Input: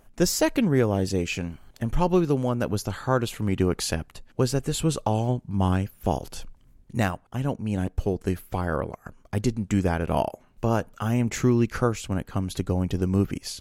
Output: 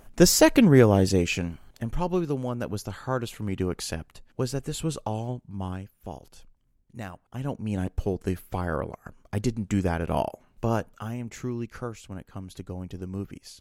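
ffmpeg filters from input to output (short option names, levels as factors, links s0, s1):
-af "volume=6.68,afade=t=out:st=0.84:d=1.11:silence=0.316228,afade=t=out:st=4.92:d=1.02:silence=0.375837,afade=t=in:st=7.05:d=0.6:silence=0.266073,afade=t=out:st=10.75:d=0.42:silence=0.354813"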